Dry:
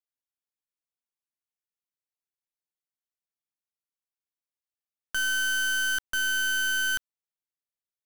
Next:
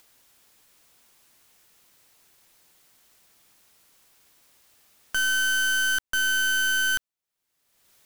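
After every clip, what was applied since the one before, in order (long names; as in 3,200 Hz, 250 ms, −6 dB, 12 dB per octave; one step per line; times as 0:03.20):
upward compression, threshold −39 dBFS
level +3 dB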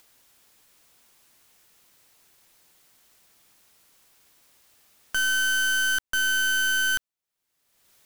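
no processing that can be heard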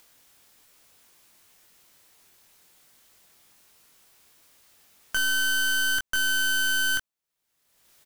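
double-tracking delay 22 ms −5 dB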